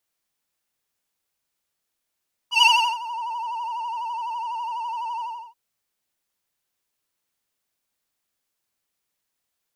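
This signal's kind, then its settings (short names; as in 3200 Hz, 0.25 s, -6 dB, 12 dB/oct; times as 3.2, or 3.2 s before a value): synth patch with vibrato A#5, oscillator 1 square, interval +19 st, oscillator 2 level -3.5 dB, sub -28 dB, noise -25.5 dB, filter bandpass, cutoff 750 Hz, Q 1.6, filter envelope 2 oct, filter decay 0.68 s, filter sustain 20%, attack 0.117 s, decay 0.35 s, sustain -21 dB, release 0.34 s, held 2.69 s, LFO 12 Hz, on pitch 86 cents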